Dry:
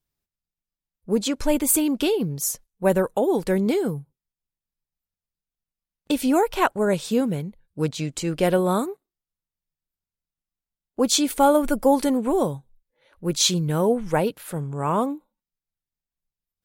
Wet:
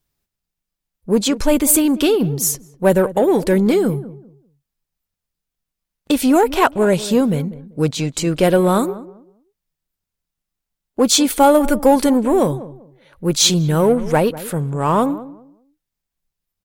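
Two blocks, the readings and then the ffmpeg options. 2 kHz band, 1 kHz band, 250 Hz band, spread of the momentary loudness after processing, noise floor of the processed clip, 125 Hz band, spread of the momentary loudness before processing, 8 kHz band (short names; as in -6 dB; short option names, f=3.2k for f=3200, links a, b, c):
+6.0 dB, +6.0 dB, +6.5 dB, 10 LU, -83 dBFS, +7.0 dB, 9 LU, +6.5 dB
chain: -filter_complex "[0:a]asplit=2[a][b];[b]asoftclip=type=tanh:threshold=-23dB,volume=-4dB[c];[a][c]amix=inputs=2:normalize=0,asplit=2[d][e];[e]adelay=195,lowpass=f=850:p=1,volume=-15dB,asplit=2[f][g];[g]adelay=195,lowpass=f=850:p=1,volume=0.26,asplit=2[h][i];[i]adelay=195,lowpass=f=850:p=1,volume=0.26[j];[d][f][h][j]amix=inputs=4:normalize=0,volume=4dB"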